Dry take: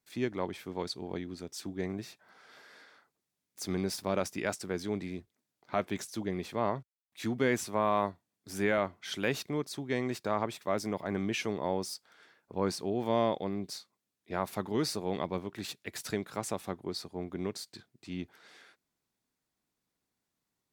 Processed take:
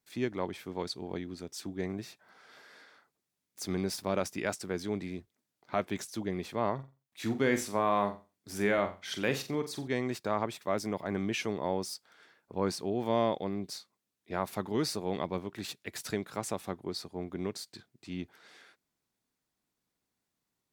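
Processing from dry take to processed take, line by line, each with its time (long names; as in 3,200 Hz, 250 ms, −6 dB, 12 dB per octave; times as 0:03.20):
0:06.74–0:09.88: flutter between parallel walls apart 7.6 metres, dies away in 0.3 s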